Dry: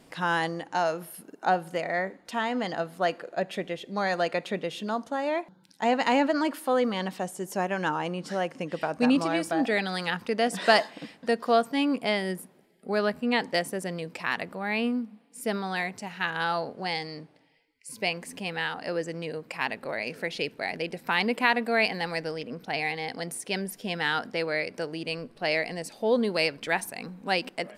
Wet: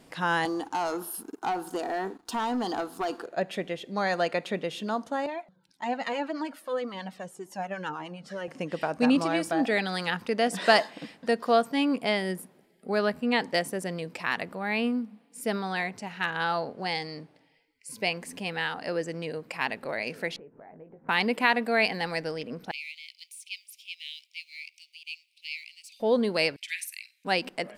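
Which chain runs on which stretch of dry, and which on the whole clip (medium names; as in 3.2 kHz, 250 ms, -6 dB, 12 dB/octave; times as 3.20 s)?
0.45–3.26 s: static phaser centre 570 Hz, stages 6 + compression 2.5:1, threshold -31 dBFS + waveshaping leveller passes 2
5.26–8.48 s: harmonic tremolo 9.4 Hz, depth 50%, crossover 850 Hz + treble shelf 9.4 kHz -6.5 dB + Shepard-style flanger falling 1.8 Hz
15.72–16.80 s: treble shelf 8.7 kHz -7 dB + hard clipper -14 dBFS
20.36–21.09 s: low-pass 1.3 kHz 24 dB/octave + compression 4:1, threshold -49 dBFS + doubling 19 ms -8 dB
22.71–26.00 s: companding laws mixed up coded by mu + steep high-pass 2.3 kHz 96 dB/octave + treble shelf 3.4 kHz -12 dB
26.56–27.25 s: steep high-pass 2.1 kHz 48 dB/octave + flutter echo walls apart 8.3 m, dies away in 0.23 s
whole clip: none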